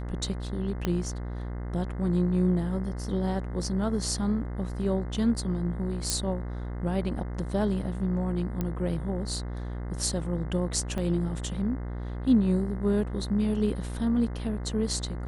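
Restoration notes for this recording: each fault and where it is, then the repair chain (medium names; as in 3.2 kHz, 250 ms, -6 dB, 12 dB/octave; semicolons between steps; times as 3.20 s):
buzz 60 Hz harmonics 35 -34 dBFS
0.85 s: pop -14 dBFS
6.10 s: pop -11 dBFS
8.61 s: pop -17 dBFS
10.98 s: dropout 4.5 ms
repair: de-click; de-hum 60 Hz, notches 35; interpolate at 10.98 s, 4.5 ms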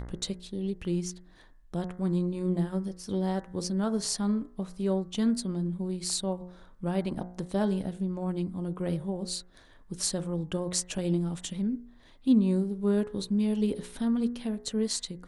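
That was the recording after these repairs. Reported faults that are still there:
0.85 s: pop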